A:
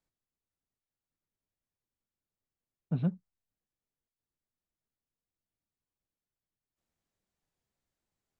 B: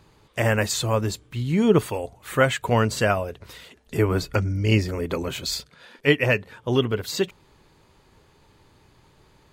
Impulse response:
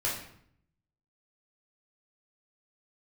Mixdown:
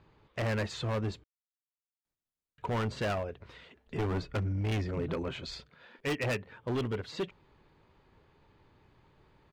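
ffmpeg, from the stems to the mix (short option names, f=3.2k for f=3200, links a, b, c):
-filter_complex "[0:a]acompressor=threshold=-35dB:ratio=2.5,adelay=2050,volume=-4dB[a];[1:a]lowpass=3k,volume=21.5dB,asoftclip=hard,volume=-21.5dB,volume=-6.5dB,asplit=3[b][c][d];[b]atrim=end=1.24,asetpts=PTS-STARTPTS,afade=t=out:st=1.236:d=0.004:c=hsin[e];[c]atrim=start=1.24:end=2.58,asetpts=PTS-STARTPTS,volume=0[f];[d]atrim=start=2.58,asetpts=PTS-STARTPTS,afade=t=in:d=0.004:c=hsin[g];[e][f][g]concat=n=3:v=0:a=1[h];[a][h]amix=inputs=2:normalize=0"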